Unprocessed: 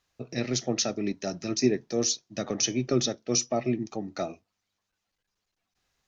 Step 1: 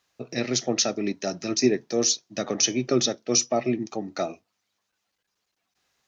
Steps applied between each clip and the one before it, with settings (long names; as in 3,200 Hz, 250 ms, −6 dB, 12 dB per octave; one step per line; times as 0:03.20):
high-pass filter 220 Hz 6 dB per octave
level +4.5 dB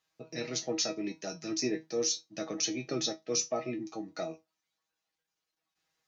tuned comb filter 160 Hz, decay 0.17 s, harmonics all, mix 90%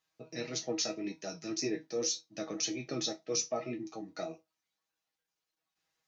flanger 1.8 Hz, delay 5.9 ms, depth 4.8 ms, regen −64%
level +2 dB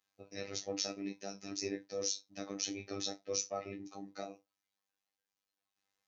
phases set to zero 98.8 Hz
level −1.5 dB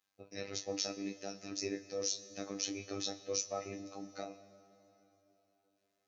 convolution reverb RT60 3.8 s, pre-delay 83 ms, DRR 15.5 dB